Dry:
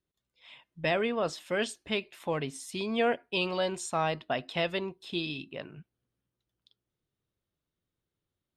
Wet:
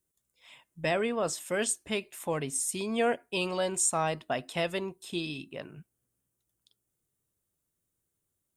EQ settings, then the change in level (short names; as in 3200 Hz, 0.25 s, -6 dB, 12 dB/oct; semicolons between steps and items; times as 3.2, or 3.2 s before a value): resonant high shelf 5900 Hz +12 dB, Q 1.5; 0.0 dB